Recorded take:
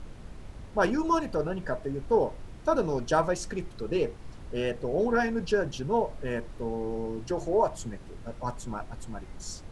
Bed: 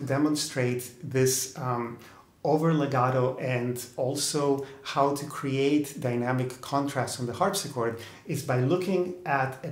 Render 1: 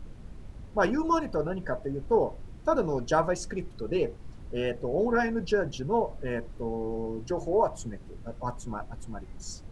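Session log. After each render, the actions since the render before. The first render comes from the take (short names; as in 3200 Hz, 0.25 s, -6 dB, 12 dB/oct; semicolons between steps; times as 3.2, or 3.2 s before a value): denoiser 6 dB, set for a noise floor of -45 dBFS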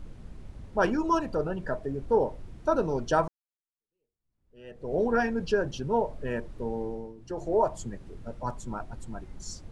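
3.28–4.94 fade in exponential; 6.81–7.52 dip -13.5 dB, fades 0.34 s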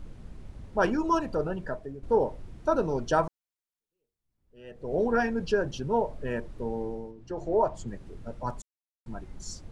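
1.53–2.03 fade out, to -11 dB; 7.11–7.88 air absorption 63 m; 8.62–9.06 mute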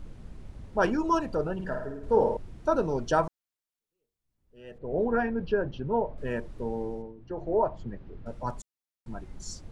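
1.54–2.37 flutter echo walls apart 9.2 m, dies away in 0.71 s; 4.78–6.18 air absorption 350 m; 7.02–8.26 air absorption 260 m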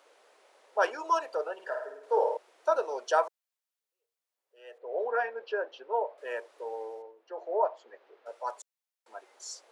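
steep high-pass 470 Hz 36 dB/oct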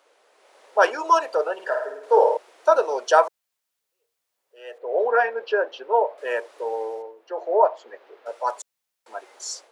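AGC gain up to 10 dB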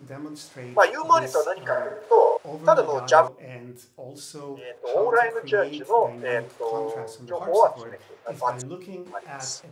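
add bed -12 dB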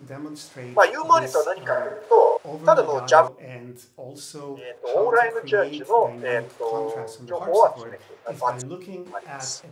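gain +1.5 dB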